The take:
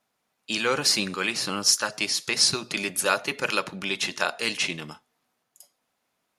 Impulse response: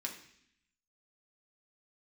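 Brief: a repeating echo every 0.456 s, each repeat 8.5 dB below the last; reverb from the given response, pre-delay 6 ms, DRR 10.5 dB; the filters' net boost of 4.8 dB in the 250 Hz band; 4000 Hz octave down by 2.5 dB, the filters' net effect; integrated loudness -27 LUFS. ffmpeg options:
-filter_complex "[0:a]equalizer=f=250:t=o:g=6.5,equalizer=f=4k:t=o:g=-3.5,aecho=1:1:456|912|1368|1824:0.376|0.143|0.0543|0.0206,asplit=2[a][b];[1:a]atrim=start_sample=2205,adelay=6[c];[b][c]afir=irnorm=-1:irlink=0,volume=-10.5dB[d];[a][d]amix=inputs=2:normalize=0,volume=-2.5dB"

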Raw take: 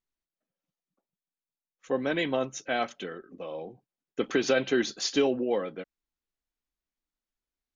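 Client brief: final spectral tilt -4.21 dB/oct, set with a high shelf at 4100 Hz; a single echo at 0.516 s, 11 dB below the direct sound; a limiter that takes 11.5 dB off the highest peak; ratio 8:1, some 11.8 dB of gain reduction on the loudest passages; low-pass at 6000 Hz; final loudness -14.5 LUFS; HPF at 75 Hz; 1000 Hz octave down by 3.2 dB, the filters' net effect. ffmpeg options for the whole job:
-af "highpass=75,lowpass=6k,equalizer=f=1k:t=o:g=-4.5,highshelf=f=4.1k:g=-9,acompressor=threshold=-33dB:ratio=8,alimiter=level_in=10dB:limit=-24dB:level=0:latency=1,volume=-10dB,aecho=1:1:516:0.282,volume=29.5dB"

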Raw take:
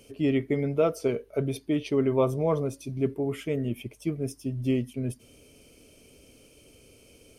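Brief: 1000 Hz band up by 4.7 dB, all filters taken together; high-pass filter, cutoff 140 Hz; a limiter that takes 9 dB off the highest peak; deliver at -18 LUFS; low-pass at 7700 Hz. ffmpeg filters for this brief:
-af "highpass=140,lowpass=7.7k,equalizer=f=1k:t=o:g=6,volume=13dB,alimiter=limit=-6dB:level=0:latency=1"

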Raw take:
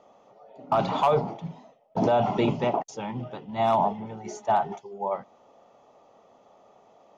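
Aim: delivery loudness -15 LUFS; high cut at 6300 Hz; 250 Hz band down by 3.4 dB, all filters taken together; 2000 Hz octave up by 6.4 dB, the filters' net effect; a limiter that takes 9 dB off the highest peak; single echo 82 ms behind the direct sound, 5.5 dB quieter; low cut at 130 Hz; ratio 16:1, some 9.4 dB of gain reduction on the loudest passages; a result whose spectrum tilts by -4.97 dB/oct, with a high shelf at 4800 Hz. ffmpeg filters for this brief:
-af "highpass=130,lowpass=6.3k,equalizer=f=250:t=o:g=-4,equalizer=f=2k:t=o:g=7.5,highshelf=f=4.8k:g=5.5,acompressor=threshold=-26dB:ratio=16,alimiter=level_in=1.5dB:limit=-24dB:level=0:latency=1,volume=-1.5dB,aecho=1:1:82:0.531,volume=20.5dB"

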